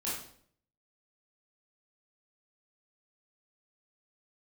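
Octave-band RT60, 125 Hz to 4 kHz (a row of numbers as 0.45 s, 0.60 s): 0.80 s, 0.70 s, 0.65 s, 0.55 s, 0.50 s, 0.50 s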